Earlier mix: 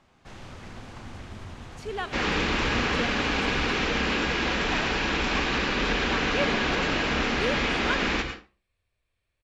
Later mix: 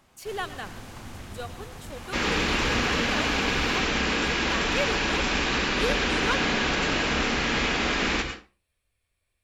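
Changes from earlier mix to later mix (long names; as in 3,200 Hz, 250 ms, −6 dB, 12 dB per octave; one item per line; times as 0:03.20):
speech: entry −1.60 s
master: remove high-frequency loss of the air 78 metres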